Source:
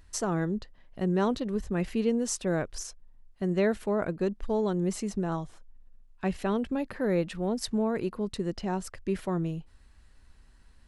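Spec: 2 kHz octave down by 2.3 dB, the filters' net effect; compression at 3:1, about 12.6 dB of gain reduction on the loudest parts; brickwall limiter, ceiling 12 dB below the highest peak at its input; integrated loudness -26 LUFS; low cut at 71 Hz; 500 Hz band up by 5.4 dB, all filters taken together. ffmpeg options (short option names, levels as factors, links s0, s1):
-af "highpass=71,equalizer=f=500:t=o:g=7,equalizer=f=2000:t=o:g=-3.5,acompressor=threshold=0.0178:ratio=3,volume=6.68,alimiter=limit=0.141:level=0:latency=1"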